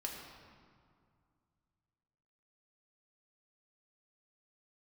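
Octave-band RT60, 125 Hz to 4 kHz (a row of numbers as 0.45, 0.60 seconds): 3.1, 2.6, 2.1, 2.2, 1.7, 1.3 seconds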